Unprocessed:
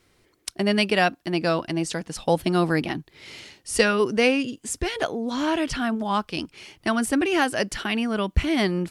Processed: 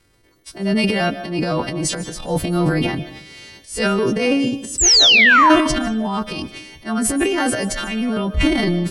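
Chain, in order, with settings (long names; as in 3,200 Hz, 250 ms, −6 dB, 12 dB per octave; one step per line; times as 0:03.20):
every partial snapped to a pitch grid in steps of 2 semitones
spectral tilt −2.5 dB per octave
sound drawn into the spectrogram fall, 0:04.78–0:05.50, 910–8,100 Hz −11 dBFS
transient designer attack −8 dB, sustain +10 dB
convolution reverb RT60 0.50 s, pre-delay 105 ms, DRR 12.5 dB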